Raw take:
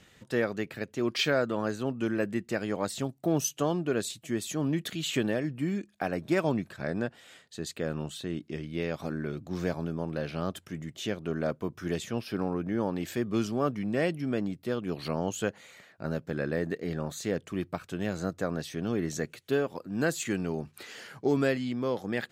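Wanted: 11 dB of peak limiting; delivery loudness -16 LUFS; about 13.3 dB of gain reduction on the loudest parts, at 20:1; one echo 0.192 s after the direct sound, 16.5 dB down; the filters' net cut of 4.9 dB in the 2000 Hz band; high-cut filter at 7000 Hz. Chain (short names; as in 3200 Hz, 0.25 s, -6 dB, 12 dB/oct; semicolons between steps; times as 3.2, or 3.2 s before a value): LPF 7000 Hz; bell 2000 Hz -6.5 dB; compressor 20:1, threshold -35 dBFS; limiter -32.5 dBFS; echo 0.192 s -16.5 dB; gain +27.5 dB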